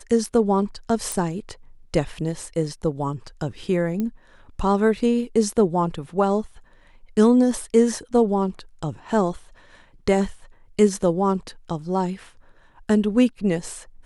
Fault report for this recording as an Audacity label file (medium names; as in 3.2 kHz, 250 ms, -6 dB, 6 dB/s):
1.120000	1.120000	pop
4.000000	4.000000	pop -15 dBFS